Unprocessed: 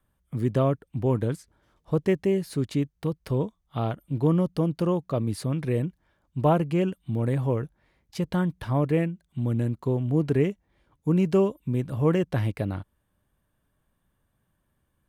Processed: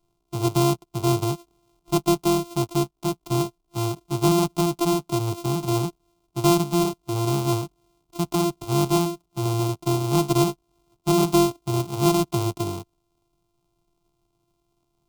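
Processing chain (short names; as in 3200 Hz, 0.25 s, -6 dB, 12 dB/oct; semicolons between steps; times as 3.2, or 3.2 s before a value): sample sorter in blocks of 128 samples; fixed phaser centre 350 Hz, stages 8; gain +3.5 dB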